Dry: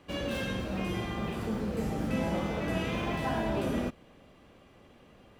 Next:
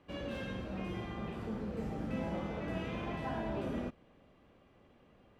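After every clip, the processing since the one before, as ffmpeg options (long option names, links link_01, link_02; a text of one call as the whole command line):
ffmpeg -i in.wav -af "lowpass=frequency=2700:poles=1,volume=-6.5dB" out.wav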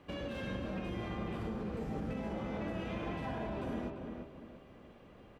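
ffmpeg -i in.wav -filter_complex "[0:a]alimiter=level_in=13dB:limit=-24dB:level=0:latency=1:release=156,volume=-13dB,asplit=2[link_01][link_02];[link_02]adelay=343,lowpass=frequency=2200:poles=1,volume=-5dB,asplit=2[link_03][link_04];[link_04]adelay=343,lowpass=frequency=2200:poles=1,volume=0.37,asplit=2[link_05][link_06];[link_06]adelay=343,lowpass=frequency=2200:poles=1,volume=0.37,asplit=2[link_07][link_08];[link_08]adelay=343,lowpass=frequency=2200:poles=1,volume=0.37,asplit=2[link_09][link_10];[link_10]adelay=343,lowpass=frequency=2200:poles=1,volume=0.37[link_11];[link_01][link_03][link_05][link_07][link_09][link_11]amix=inputs=6:normalize=0,volume=5.5dB" out.wav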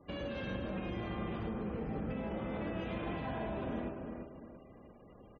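ffmpeg -i in.wav -filter_complex "[0:a]asplit=2[link_01][link_02];[link_02]adelay=110,highpass=300,lowpass=3400,asoftclip=type=hard:threshold=-38dB,volume=-10dB[link_03];[link_01][link_03]amix=inputs=2:normalize=0,afftfilt=real='re*gte(hypot(re,im),0.00141)':imag='im*gte(hypot(re,im),0.00141)':win_size=1024:overlap=0.75" out.wav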